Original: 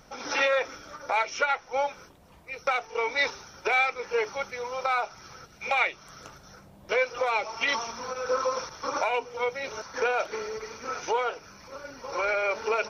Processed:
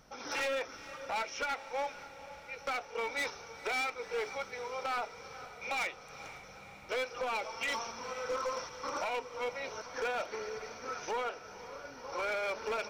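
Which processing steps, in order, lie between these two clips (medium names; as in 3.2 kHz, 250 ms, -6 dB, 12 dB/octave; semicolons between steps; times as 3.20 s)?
hard clipper -24 dBFS, distortion -11 dB; echo that smears into a reverb 488 ms, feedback 69%, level -14.5 dB; trim -6.5 dB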